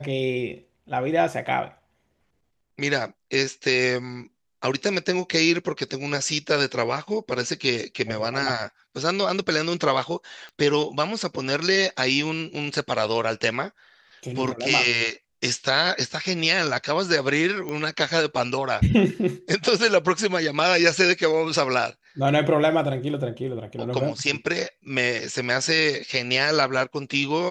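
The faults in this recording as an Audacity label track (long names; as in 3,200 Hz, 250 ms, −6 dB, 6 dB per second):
10.490000	10.490000	click −28 dBFS
17.690000	17.690000	click −17 dBFS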